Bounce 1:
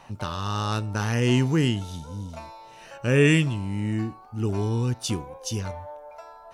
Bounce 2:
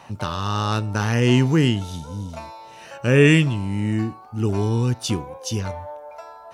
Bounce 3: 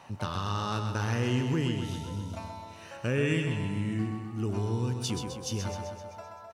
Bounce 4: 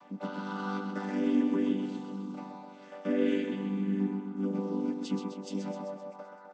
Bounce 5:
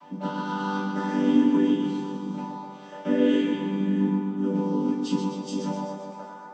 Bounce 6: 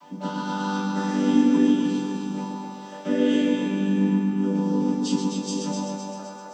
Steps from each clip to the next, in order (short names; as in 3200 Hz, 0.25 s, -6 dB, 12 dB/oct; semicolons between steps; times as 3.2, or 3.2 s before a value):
HPF 63 Hz; dynamic EQ 9400 Hz, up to -4 dB, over -45 dBFS, Q 0.78; gain +4.5 dB
compressor 2.5:1, threshold -22 dBFS, peak gain reduction 8.5 dB; on a send: feedback echo 0.129 s, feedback 59%, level -6.5 dB; on the sum: gain -6.5 dB
chord vocoder major triad, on G3
reverb, pre-delay 3 ms, DRR -7 dB
tone controls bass -1 dB, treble +10 dB; on a send: split-band echo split 370 Hz, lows 0.117 s, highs 0.258 s, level -6.5 dB